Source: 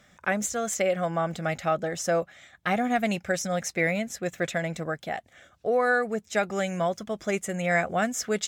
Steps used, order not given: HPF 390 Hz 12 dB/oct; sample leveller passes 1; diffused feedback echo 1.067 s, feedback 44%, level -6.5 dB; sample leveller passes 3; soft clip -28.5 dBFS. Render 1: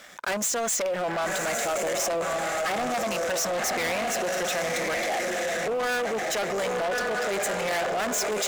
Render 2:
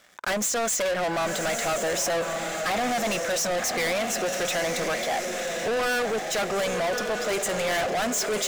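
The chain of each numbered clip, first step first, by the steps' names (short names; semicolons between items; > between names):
diffused feedback echo > soft clip > first sample leveller > HPF > second sample leveller; first sample leveller > HPF > soft clip > diffused feedback echo > second sample leveller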